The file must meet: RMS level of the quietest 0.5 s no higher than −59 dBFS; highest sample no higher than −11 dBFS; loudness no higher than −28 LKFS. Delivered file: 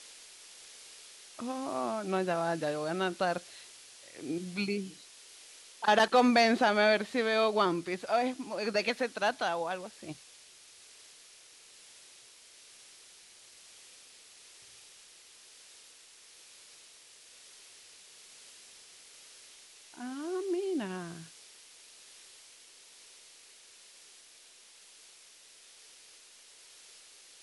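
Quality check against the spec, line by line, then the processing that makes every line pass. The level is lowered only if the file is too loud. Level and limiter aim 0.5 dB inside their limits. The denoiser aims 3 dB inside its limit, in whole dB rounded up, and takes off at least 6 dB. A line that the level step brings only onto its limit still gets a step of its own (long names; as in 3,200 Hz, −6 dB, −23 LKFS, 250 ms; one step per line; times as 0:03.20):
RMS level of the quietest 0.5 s −57 dBFS: out of spec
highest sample −12.0 dBFS: in spec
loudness −30.5 LKFS: in spec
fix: broadband denoise 6 dB, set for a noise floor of −57 dBFS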